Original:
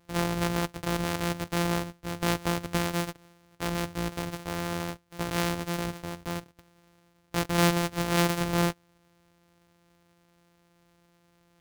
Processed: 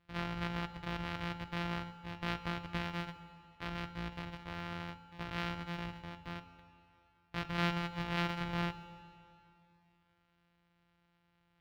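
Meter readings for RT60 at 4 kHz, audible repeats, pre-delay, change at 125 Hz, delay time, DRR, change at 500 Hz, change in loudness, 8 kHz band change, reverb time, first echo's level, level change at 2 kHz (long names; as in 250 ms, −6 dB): 2.4 s, no echo audible, 9 ms, −9.5 dB, no echo audible, 10.5 dB, −14.5 dB, −10.0 dB, −24.5 dB, 2.6 s, no echo audible, −7.0 dB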